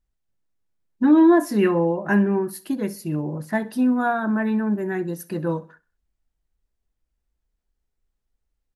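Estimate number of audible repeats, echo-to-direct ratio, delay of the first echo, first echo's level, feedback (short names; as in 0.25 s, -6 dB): 2, -19.5 dB, 64 ms, -20.0 dB, 40%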